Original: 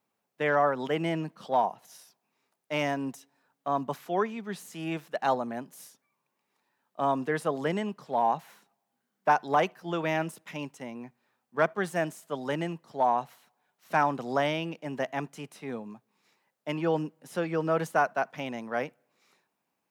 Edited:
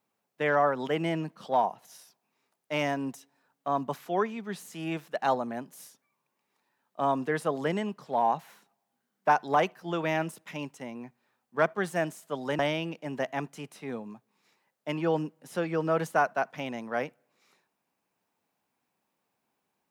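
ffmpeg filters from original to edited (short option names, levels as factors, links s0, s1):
-filter_complex "[0:a]asplit=2[s0][s1];[s0]atrim=end=12.592[s2];[s1]atrim=start=14.388[s3];[s2][s3]acrossfade=d=0.004:c1=hsin:c2=hsin"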